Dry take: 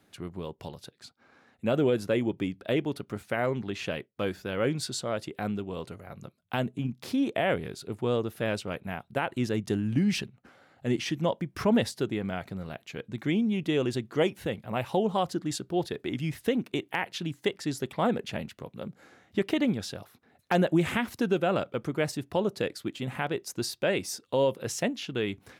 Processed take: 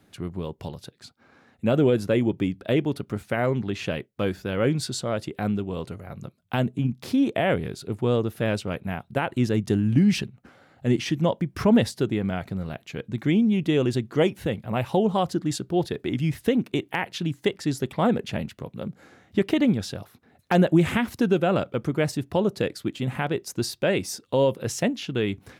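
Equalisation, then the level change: bass shelf 260 Hz +6.5 dB; +2.5 dB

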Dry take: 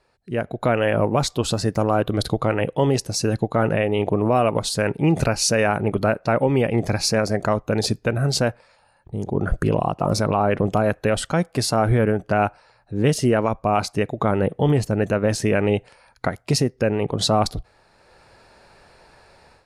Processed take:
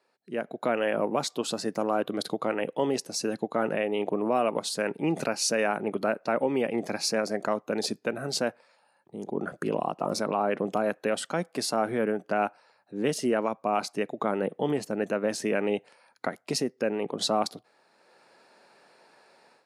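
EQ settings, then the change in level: high-pass 200 Hz 24 dB/octave; -6.5 dB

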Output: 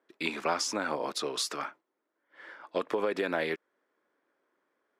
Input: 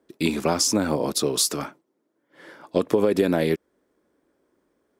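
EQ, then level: band-pass filter 1.6 kHz, Q 0.89; 0.0 dB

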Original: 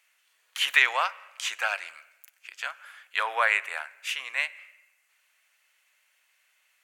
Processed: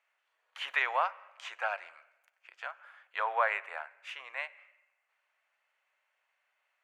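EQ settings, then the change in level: band-pass filter 710 Hz, Q 1.1; 0.0 dB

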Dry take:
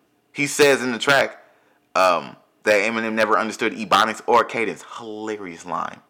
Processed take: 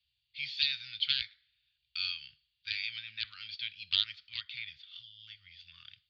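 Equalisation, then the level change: inverse Chebyshev band-stop 300–830 Hz, stop band 80 dB; rippled Chebyshev low-pass 4.7 kHz, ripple 3 dB; 0.0 dB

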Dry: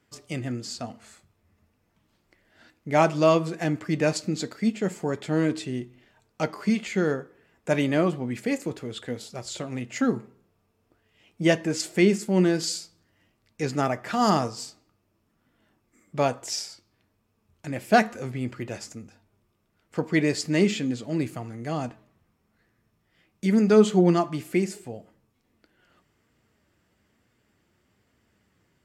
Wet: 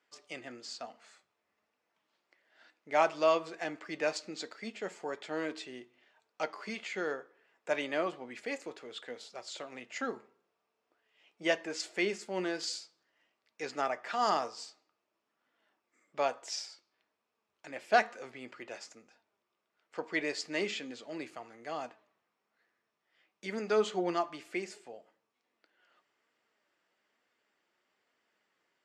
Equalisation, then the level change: high-pass 540 Hz 12 dB/octave; low-pass 5.7 kHz 12 dB/octave; -5.0 dB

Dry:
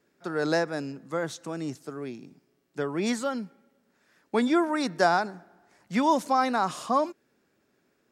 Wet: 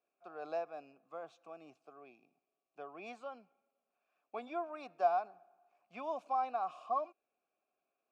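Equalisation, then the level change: vowel filter a; peaking EQ 2.5 kHz +3.5 dB 0.4 oct; -4.0 dB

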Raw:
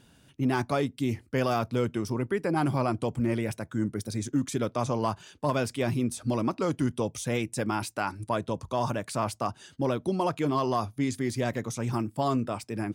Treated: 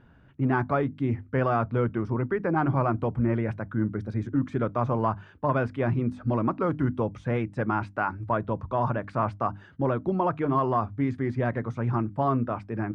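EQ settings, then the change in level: resonant low-pass 1.5 kHz, resonance Q 1.6; bass shelf 110 Hz +10 dB; hum notches 50/100/150/200/250/300 Hz; 0.0 dB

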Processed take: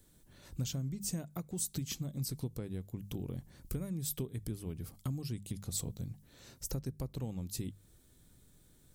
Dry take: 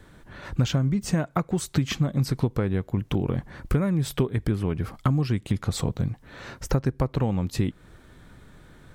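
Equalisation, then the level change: pre-emphasis filter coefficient 0.8; peaking EQ 1.5 kHz -13 dB 2.5 oct; hum notches 50/100/150/200 Hz; +1.0 dB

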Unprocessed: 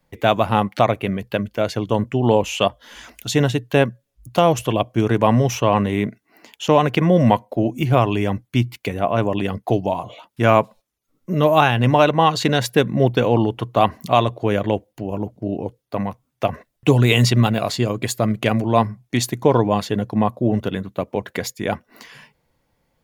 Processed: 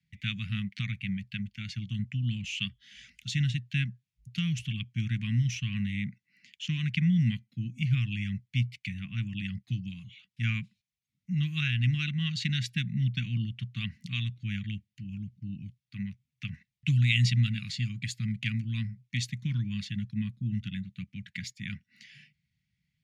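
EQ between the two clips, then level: high-pass 87 Hz; elliptic band-stop 180–2100 Hz, stop band 50 dB; distance through air 100 m; -5.5 dB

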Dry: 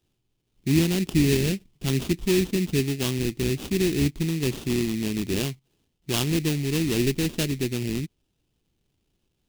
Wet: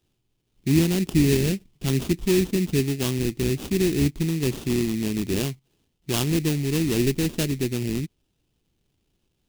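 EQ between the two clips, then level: dynamic bell 3.1 kHz, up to -3 dB, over -40 dBFS, Q 0.77; +1.5 dB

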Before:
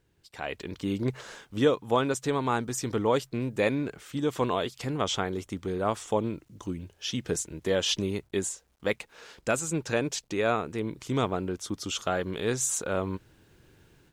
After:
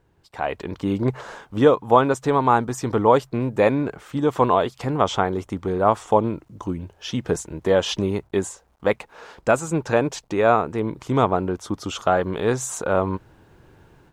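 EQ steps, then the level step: bass shelf 340 Hz +9.5 dB; peaking EQ 900 Hz +13.5 dB 1.9 oct; -2.0 dB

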